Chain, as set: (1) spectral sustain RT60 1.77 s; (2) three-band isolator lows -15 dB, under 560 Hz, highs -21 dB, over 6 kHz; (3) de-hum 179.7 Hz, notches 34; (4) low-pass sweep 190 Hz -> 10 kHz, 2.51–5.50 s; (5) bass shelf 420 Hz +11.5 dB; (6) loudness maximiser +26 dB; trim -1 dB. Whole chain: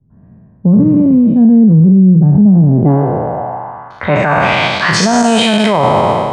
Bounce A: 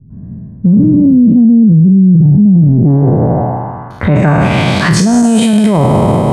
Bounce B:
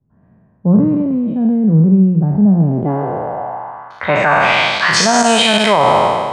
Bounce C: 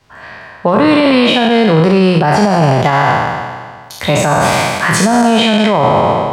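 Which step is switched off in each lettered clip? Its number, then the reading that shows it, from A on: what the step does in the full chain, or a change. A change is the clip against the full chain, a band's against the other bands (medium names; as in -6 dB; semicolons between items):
2, 125 Hz band +5.5 dB; 5, 125 Hz band -5.5 dB; 4, 125 Hz band -7.0 dB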